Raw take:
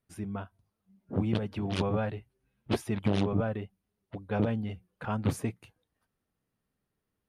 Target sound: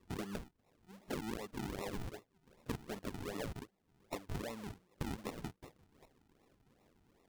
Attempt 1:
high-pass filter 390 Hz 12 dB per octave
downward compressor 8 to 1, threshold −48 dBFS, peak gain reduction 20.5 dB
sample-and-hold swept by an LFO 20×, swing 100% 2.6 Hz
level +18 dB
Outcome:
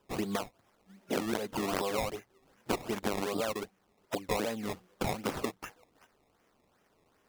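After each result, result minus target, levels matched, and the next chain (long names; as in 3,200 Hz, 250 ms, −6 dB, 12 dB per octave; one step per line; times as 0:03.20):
sample-and-hold swept by an LFO: distortion −14 dB; downward compressor: peak gain reduction −9 dB
high-pass filter 390 Hz 12 dB per octave
downward compressor 8 to 1, threshold −48 dBFS, peak gain reduction 20.5 dB
sample-and-hold swept by an LFO 55×, swing 100% 2.6 Hz
level +18 dB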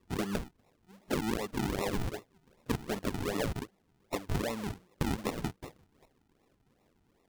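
downward compressor: peak gain reduction −9 dB
high-pass filter 390 Hz 12 dB per octave
downward compressor 8 to 1, threshold −58.5 dBFS, peak gain reduction 30 dB
sample-and-hold swept by an LFO 55×, swing 100% 2.6 Hz
level +18 dB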